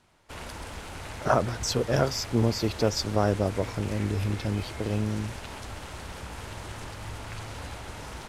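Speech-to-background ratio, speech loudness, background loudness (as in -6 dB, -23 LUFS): 11.5 dB, -28.0 LUFS, -39.5 LUFS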